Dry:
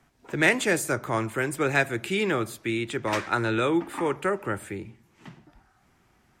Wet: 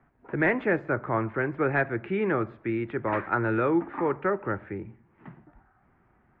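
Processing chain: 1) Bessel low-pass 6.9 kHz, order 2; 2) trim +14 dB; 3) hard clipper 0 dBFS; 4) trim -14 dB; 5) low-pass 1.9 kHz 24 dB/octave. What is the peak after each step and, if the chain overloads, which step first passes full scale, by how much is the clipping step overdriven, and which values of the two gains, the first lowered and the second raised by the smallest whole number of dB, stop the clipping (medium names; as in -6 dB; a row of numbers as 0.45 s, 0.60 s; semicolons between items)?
-7.5 dBFS, +6.5 dBFS, 0.0 dBFS, -14.0 dBFS, -13.5 dBFS; step 2, 6.5 dB; step 2 +7 dB, step 4 -7 dB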